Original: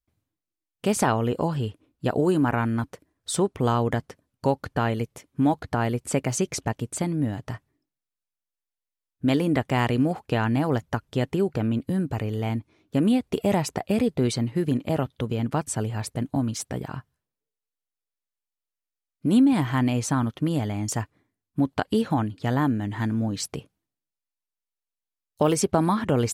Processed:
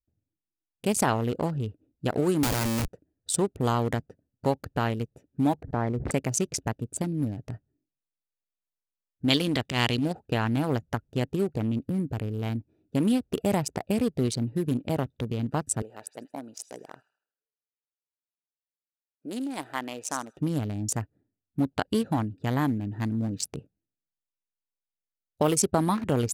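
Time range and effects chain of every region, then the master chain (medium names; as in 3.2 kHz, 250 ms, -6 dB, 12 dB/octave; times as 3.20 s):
2.43–2.88 s: Schmitt trigger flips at -38 dBFS + three bands compressed up and down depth 100%
5.56–6.11 s: Chebyshev low-pass 2.1 kHz, order 6 + peaking EQ 1.5 kHz -6.5 dB 0.65 oct + decay stretcher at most 22 dB/s
9.30–10.15 s: peaking EQ 3.7 kHz +14.5 dB 1.2 oct + transient shaper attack -11 dB, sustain -3 dB
15.82–20.37 s: Chebyshev high-pass 540 Hz + feedback echo behind a high-pass 79 ms, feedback 43%, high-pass 2.6 kHz, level -4 dB
whole clip: local Wiener filter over 41 samples; treble shelf 4 kHz +10.5 dB; trim -2.5 dB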